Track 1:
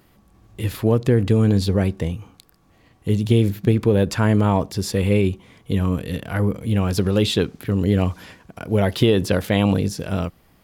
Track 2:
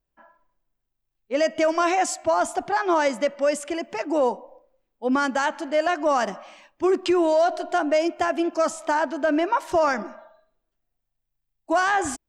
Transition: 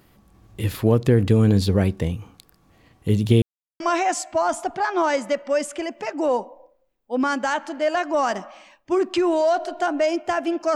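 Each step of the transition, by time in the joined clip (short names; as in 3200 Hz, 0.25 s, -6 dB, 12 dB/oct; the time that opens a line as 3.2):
track 1
3.42–3.8 mute
3.8 switch to track 2 from 1.72 s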